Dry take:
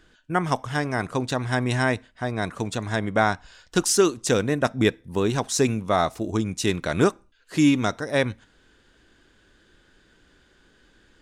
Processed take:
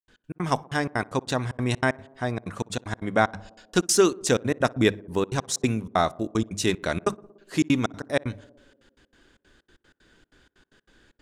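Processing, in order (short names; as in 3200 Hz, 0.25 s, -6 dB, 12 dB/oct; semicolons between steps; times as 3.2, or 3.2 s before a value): notches 50/100/150/200 Hz; step gate ".x.x.xxx.xx" 189 bpm -60 dB; on a send: tape echo 60 ms, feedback 89%, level -22 dB, low-pass 1100 Hz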